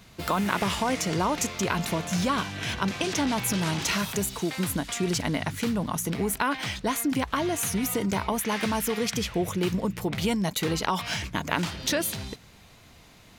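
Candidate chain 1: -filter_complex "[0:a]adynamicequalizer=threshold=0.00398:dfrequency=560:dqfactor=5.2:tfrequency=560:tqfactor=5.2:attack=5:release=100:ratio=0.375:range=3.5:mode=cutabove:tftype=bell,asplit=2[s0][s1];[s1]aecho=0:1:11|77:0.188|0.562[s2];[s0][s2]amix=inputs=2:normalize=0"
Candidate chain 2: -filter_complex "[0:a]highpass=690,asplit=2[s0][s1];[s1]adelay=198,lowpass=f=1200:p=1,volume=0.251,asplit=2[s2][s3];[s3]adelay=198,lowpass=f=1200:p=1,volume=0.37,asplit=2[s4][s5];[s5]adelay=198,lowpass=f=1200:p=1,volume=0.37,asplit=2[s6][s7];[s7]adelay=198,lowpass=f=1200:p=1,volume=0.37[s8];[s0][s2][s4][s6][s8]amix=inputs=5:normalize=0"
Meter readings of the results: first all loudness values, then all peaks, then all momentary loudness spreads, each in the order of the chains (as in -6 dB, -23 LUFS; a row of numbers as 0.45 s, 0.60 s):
-26.0 LUFS, -30.5 LUFS; -7.5 dBFS, -6.5 dBFS; 3 LU, 6 LU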